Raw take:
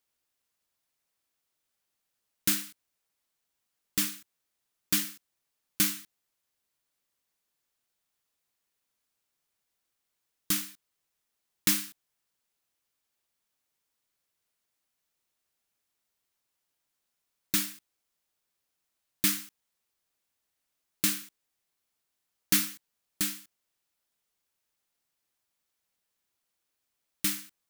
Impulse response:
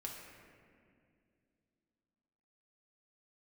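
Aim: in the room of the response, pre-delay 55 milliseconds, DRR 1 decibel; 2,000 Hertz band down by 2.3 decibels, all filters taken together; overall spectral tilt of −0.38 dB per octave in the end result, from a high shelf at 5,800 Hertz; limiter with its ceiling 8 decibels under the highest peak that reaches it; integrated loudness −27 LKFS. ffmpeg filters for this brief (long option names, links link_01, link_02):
-filter_complex "[0:a]equalizer=frequency=2000:width_type=o:gain=-3.5,highshelf=frequency=5800:gain=4.5,alimiter=limit=-12.5dB:level=0:latency=1,asplit=2[link_01][link_02];[1:a]atrim=start_sample=2205,adelay=55[link_03];[link_02][link_03]afir=irnorm=-1:irlink=0,volume=1dB[link_04];[link_01][link_04]amix=inputs=2:normalize=0"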